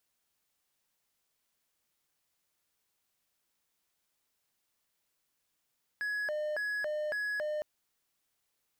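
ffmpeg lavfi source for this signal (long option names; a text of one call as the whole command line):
ffmpeg -f lavfi -i "aevalsrc='0.0335*(1-4*abs(mod((1142.5*t+537.5/1.8*(0.5-abs(mod(1.8*t,1)-0.5)))+0.25,1)-0.5))':duration=1.61:sample_rate=44100" out.wav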